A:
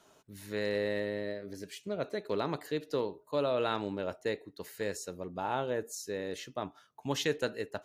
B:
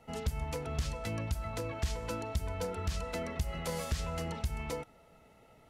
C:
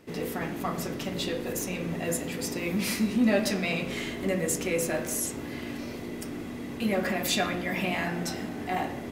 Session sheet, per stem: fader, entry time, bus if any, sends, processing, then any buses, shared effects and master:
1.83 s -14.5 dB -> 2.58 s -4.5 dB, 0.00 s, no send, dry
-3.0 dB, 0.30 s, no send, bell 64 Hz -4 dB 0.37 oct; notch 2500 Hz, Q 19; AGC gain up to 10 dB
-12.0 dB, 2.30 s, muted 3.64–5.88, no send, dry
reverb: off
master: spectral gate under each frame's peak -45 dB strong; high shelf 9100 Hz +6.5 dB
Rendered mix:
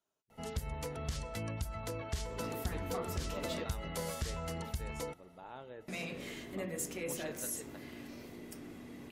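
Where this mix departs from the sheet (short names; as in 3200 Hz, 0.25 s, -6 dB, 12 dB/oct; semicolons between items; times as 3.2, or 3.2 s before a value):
stem A -14.5 dB -> -26.0 dB; stem B: missing AGC gain up to 10 dB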